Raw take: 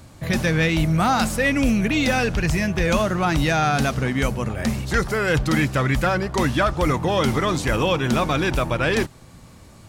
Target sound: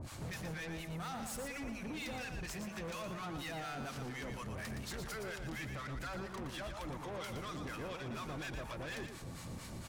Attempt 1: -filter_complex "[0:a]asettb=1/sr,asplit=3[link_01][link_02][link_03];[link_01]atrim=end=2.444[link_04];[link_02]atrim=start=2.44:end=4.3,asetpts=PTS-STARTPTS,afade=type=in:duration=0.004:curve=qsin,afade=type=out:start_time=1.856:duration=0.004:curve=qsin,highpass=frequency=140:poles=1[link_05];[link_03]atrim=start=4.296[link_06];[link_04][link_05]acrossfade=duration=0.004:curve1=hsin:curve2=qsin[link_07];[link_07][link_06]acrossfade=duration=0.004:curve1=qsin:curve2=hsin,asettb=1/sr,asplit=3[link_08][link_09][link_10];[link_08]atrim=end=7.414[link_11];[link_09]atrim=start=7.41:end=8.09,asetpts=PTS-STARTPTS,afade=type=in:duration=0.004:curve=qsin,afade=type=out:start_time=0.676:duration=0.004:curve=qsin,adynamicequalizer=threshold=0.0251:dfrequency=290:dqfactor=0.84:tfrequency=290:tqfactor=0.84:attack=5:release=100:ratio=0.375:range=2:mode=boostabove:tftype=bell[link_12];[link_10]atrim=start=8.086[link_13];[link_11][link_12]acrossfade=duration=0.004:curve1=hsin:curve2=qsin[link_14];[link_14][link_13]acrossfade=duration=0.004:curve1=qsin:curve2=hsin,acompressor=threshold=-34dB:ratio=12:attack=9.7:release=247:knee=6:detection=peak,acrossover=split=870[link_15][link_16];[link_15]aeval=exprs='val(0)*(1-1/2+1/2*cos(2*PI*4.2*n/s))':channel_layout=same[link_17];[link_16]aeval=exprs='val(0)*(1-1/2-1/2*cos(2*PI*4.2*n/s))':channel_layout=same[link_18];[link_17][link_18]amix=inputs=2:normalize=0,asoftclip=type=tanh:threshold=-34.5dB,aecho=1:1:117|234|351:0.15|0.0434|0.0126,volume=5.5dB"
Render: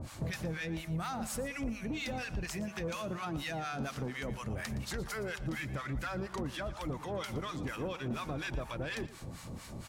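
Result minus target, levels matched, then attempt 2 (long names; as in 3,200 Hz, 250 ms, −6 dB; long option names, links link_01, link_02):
soft clipping: distortion −10 dB; echo-to-direct −9.5 dB
-filter_complex "[0:a]asettb=1/sr,asplit=3[link_01][link_02][link_03];[link_01]atrim=end=2.444[link_04];[link_02]atrim=start=2.44:end=4.3,asetpts=PTS-STARTPTS,afade=type=in:duration=0.004:curve=qsin,afade=type=out:start_time=1.856:duration=0.004:curve=qsin,highpass=frequency=140:poles=1[link_05];[link_03]atrim=start=4.296[link_06];[link_04][link_05]acrossfade=duration=0.004:curve1=hsin:curve2=qsin[link_07];[link_07][link_06]acrossfade=duration=0.004:curve1=qsin:curve2=hsin,asettb=1/sr,asplit=3[link_08][link_09][link_10];[link_08]atrim=end=7.414[link_11];[link_09]atrim=start=7.41:end=8.09,asetpts=PTS-STARTPTS,afade=type=in:duration=0.004:curve=qsin,afade=type=out:start_time=0.676:duration=0.004:curve=qsin,adynamicequalizer=threshold=0.0251:dfrequency=290:dqfactor=0.84:tfrequency=290:tqfactor=0.84:attack=5:release=100:ratio=0.375:range=2:mode=boostabove:tftype=bell[link_12];[link_10]atrim=start=8.086[link_13];[link_11][link_12]acrossfade=duration=0.004:curve1=hsin:curve2=qsin[link_14];[link_14][link_13]acrossfade=duration=0.004:curve1=qsin:curve2=hsin,acompressor=threshold=-34dB:ratio=12:attack=9.7:release=247:knee=6:detection=peak,acrossover=split=870[link_15][link_16];[link_15]aeval=exprs='val(0)*(1-1/2+1/2*cos(2*PI*4.2*n/s))':channel_layout=same[link_17];[link_16]aeval=exprs='val(0)*(1-1/2-1/2*cos(2*PI*4.2*n/s))':channel_layout=same[link_18];[link_17][link_18]amix=inputs=2:normalize=0,asoftclip=type=tanh:threshold=-46dB,aecho=1:1:117|234|351|468:0.447|0.13|0.0376|0.0109,volume=5.5dB"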